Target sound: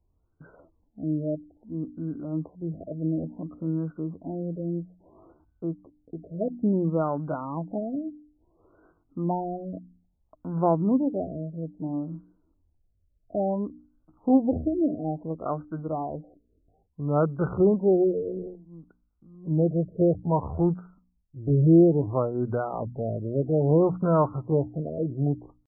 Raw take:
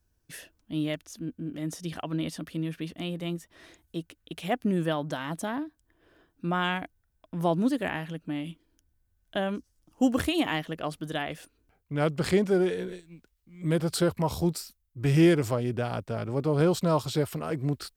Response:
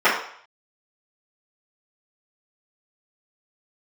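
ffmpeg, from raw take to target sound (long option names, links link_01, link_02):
-af "bandreject=frequency=60:width_type=h:width=6,bandreject=frequency=120:width_type=h:width=6,bandreject=frequency=180:width_type=h:width=6,bandreject=frequency=240:width_type=h:width=6,bandreject=frequency=300:width_type=h:width=6,atempo=0.7,afftfilt=real='re*lt(b*sr/1024,670*pow(1600/670,0.5+0.5*sin(2*PI*0.59*pts/sr)))':imag='im*lt(b*sr/1024,670*pow(1600/670,0.5+0.5*sin(2*PI*0.59*pts/sr)))':win_size=1024:overlap=0.75,volume=3dB"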